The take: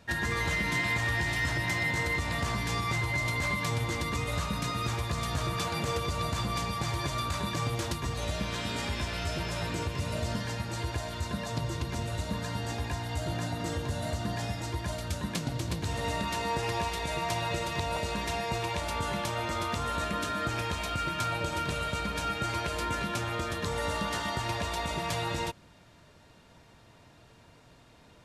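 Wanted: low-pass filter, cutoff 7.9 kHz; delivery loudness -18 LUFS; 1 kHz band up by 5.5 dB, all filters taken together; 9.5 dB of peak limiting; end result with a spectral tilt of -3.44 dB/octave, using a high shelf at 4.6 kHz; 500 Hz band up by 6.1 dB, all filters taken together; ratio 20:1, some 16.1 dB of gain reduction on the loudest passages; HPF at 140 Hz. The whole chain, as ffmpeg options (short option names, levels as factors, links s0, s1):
-af "highpass=140,lowpass=7900,equalizer=f=500:t=o:g=6,equalizer=f=1000:t=o:g=5.5,highshelf=f=4600:g=-6,acompressor=threshold=0.0112:ratio=20,volume=26.6,alimiter=limit=0.335:level=0:latency=1"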